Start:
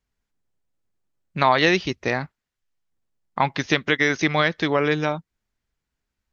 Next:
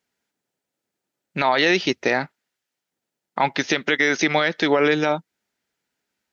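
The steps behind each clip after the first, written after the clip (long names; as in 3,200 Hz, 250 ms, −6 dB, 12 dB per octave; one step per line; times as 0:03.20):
high-pass filter 240 Hz 12 dB per octave
notch filter 1,100 Hz, Q 6.9
brickwall limiter −14 dBFS, peak gain reduction 11 dB
level +6.5 dB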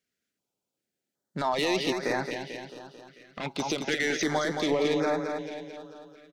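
soft clipping −14 dBFS, distortion −13 dB
on a send: repeating echo 221 ms, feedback 58%, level −6 dB
on the sum: notch on a step sequencer 2.6 Hz 890–3,000 Hz
level −4.5 dB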